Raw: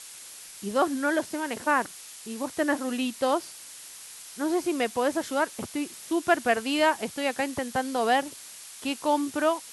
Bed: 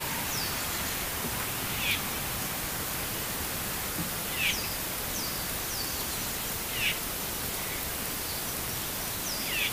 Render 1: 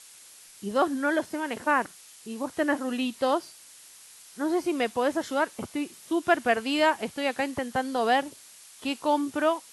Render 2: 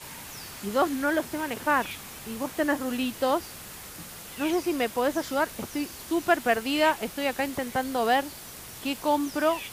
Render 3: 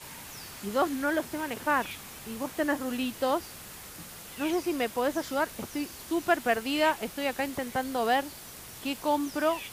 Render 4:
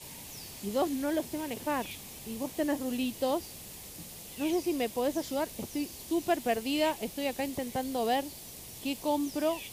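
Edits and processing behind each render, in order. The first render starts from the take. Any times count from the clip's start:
noise reduction from a noise print 6 dB
mix in bed −10 dB
level −2.5 dB
parametric band 1,400 Hz −14 dB 0.96 octaves

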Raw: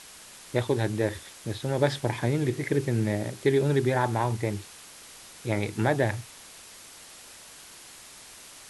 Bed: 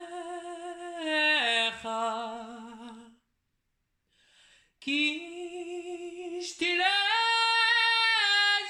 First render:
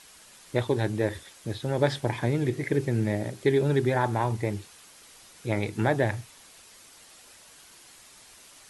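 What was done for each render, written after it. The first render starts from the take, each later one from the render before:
broadband denoise 6 dB, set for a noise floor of −48 dBFS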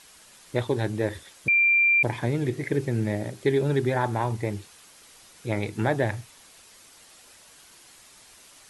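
0:01.48–0:02.03: beep over 2,370 Hz −16.5 dBFS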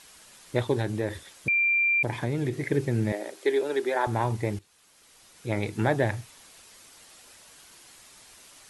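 0:00.81–0:02.58: downward compressor 2 to 1, threshold −24 dBFS
0:03.12–0:04.07: high-pass filter 340 Hz 24 dB per octave
0:04.59–0:05.68: fade in, from −15.5 dB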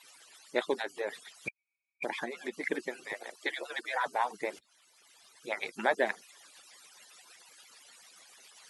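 harmonic-percussive split with one part muted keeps percussive
meter weighting curve A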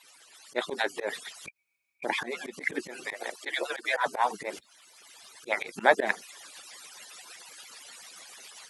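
volume swells 102 ms
automatic gain control gain up to 8.5 dB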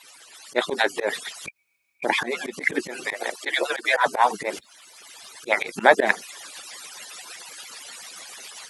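level +7.5 dB
brickwall limiter −1 dBFS, peak gain reduction 2.5 dB

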